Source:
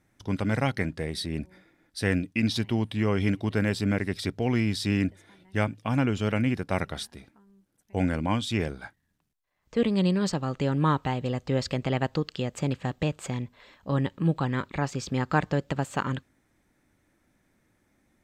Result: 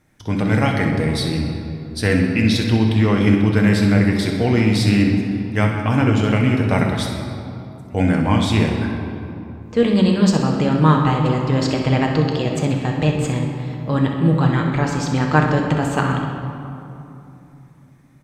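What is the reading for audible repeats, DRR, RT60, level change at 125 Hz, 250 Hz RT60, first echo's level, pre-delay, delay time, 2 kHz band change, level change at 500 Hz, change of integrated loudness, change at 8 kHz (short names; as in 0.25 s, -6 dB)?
1, 0.5 dB, 2.9 s, +11.0 dB, 3.8 s, -10.0 dB, 7 ms, 64 ms, +9.0 dB, +9.0 dB, +10.0 dB, +8.0 dB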